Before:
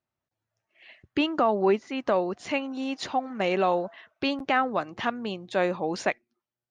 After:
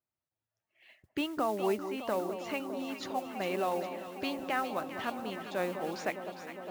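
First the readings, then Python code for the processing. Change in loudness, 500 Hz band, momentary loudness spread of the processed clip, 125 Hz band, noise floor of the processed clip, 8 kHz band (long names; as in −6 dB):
−7.5 dB, −7.5 dB, 7 LU, −7.5 dB, below −85 dBFS, −3.0 dB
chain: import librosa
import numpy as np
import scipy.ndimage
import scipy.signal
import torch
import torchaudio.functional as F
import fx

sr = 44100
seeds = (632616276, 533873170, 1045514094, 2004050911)

p1 = fx.mod_noise(x, sr, seeds[0], snr_db=21)
p2 = p1 + fx.echo_alternate(p1, sr, ms=203, hz=1100.0, feedback_pct=87, wet_db=-9.0, dry=0)
y = p2 * librosa.db_to_amplitude(-8.5)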